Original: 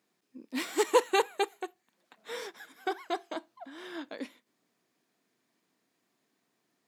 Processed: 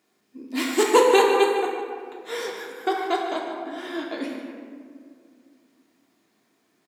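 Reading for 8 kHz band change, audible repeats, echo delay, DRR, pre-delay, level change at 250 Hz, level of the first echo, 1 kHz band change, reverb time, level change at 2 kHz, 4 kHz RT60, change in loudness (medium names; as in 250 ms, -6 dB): +8.0 dB, 1, 150 ms, -2.0 dB, 3 ms, +11.0 dB, -11.0 dB, +9.5 dB, 2.2 s, +8.5 dB, 1.0 s, +9.0 dB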